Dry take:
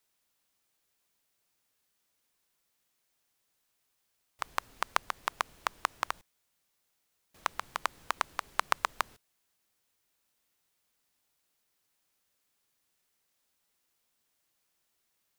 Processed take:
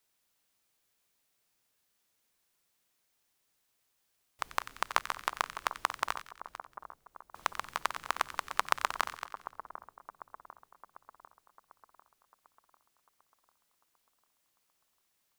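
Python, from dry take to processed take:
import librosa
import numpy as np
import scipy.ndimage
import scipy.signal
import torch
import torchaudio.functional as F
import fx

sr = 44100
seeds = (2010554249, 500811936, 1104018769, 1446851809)

y = fx.reverse_delay(x, sr, ms=226, wet_db=-11)
y = fx.echo_split(y, sr, split_hz=1300.0, low_ms=747, high_ms=91, feedback_pct=52, wet_db=-12)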